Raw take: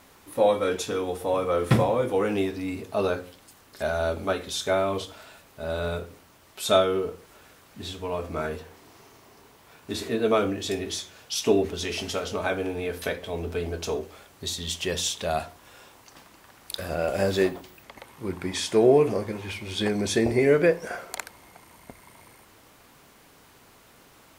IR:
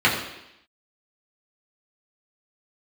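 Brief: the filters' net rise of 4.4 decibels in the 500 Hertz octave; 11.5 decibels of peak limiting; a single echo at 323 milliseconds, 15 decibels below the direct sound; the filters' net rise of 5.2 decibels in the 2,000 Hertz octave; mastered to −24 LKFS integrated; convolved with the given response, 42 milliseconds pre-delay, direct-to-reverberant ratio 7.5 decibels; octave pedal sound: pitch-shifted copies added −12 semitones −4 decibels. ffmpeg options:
-filter_complex "[0:a]equalizer=frequency=500:width_type=o:gain=5,equalizer=frequency=2000:width_type=o:gain=6.5,alimiter=limit=-15dB:level=0:latency=1,aecho=1:1:323:0.178,asplit=2[link_01][link_02];[1:a]atrim=start_sample=2205,adelay=42[link_03];[link_02][link_03]afir=irnorm=-1:irlink=0,volume=-28dB[link_04];[link_01][link_04]amix=inputs=2:normalize=0,asplit=2[link_05][link_06];[link_06]asetrate=22050,aresample=44100,atempo=2,volume=-4dB[link_07];[link_05][link_07]amix=inputs=2:normalize=0,volume=0.5dB"

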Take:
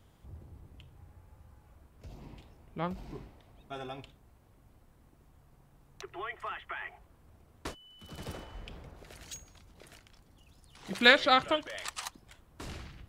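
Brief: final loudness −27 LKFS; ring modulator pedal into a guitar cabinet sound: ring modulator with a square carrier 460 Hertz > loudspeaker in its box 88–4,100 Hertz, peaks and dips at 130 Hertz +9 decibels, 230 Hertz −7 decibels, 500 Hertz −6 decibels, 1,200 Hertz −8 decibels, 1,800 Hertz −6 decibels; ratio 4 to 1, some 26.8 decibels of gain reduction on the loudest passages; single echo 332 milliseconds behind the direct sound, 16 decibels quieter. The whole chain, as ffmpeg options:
ffmpeg -i in.wav -af "acompressor=threshold=-49dB:ratio=4,aecho=1:1:332:0.158,aeval=exprs='val(0)*sgn(sin(2*PI*460*n/s))':channel_layout=same,highpass=88,equalizer=frequency=130:width_type=q:width=4:gain=9,equalizer=frequency=230:width_type=q:width=4:gain=-7,equalizer=frequency=500:width_type=q:width=4:gain=-6,equalizer=frequency=1200:width_type=q:width=4:gain=-8,equalizer=frequency=1800:width_type=q:width=4:gain=-6,lowpass=frequency=4100:width=0.5412,lowpass=frequency=4100:width=1.3066,volume=28.5dB" out.wav

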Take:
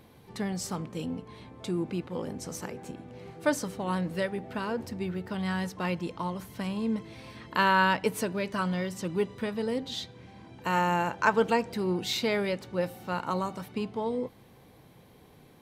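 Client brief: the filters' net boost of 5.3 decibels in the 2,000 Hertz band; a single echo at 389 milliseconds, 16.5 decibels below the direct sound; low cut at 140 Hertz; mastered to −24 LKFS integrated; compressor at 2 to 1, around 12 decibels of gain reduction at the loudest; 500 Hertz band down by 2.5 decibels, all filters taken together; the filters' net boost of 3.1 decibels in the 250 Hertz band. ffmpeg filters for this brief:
ffmpeg -i in.wav -af "highpass=140,equalizer=frequency=250:width_type=o:gain=6.5,equalizer=frequency=500:width_type=o:gain=-5.5,equalizer=frequency=2000:width_type=o:gain=7.5,acompressor=threshold=-38dB:ratio=2,aecho=1:1:389:0.15,volume=13dB" out.wav

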